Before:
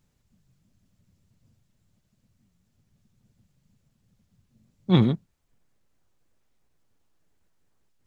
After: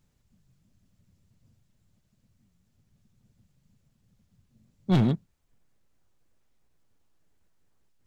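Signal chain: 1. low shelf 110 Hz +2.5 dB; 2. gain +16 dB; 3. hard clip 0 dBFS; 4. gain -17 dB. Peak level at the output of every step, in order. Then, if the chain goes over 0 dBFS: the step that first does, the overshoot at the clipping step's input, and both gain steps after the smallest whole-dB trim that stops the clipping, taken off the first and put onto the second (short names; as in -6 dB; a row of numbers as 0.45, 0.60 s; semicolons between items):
-6.5, +9.5, 0.0, -17.0 dBFS; step 2, 9.5 dB; step 2 +6 dB, step 4 -7 dB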